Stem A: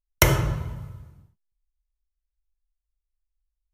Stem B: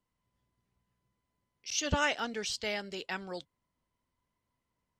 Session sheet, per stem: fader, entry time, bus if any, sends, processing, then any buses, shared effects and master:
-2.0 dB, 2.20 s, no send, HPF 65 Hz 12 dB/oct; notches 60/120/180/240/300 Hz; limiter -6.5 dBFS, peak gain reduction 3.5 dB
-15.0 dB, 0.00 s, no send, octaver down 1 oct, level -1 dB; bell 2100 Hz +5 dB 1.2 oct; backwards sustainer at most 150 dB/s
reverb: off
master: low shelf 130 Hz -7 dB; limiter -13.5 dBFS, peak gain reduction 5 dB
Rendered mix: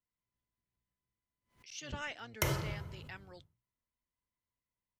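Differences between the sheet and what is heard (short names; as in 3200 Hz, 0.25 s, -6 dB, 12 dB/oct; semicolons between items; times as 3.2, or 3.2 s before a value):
stem A -2.0 dB -> -12.0 dB; master: missing low shelf 130 Hz -7 dB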